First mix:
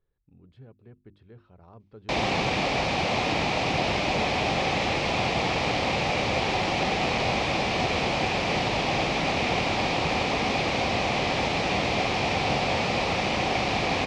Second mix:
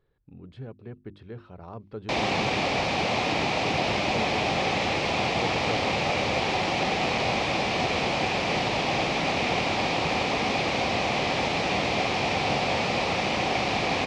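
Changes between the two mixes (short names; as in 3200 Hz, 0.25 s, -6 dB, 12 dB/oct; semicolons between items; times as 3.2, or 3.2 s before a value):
speech +10.5 dB; master: add low shelf 61 Hz -9.5 dB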